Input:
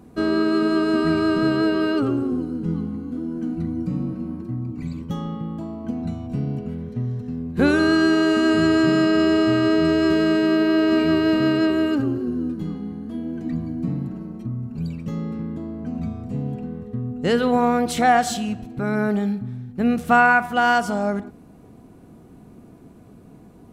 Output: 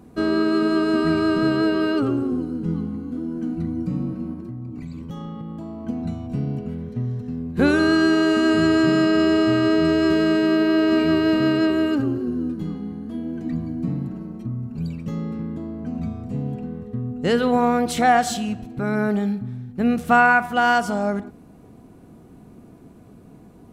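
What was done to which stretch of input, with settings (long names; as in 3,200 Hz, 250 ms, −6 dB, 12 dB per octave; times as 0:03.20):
0:04.33–0:05.87: downward compressor 5 to 1, threshold −29 dBFS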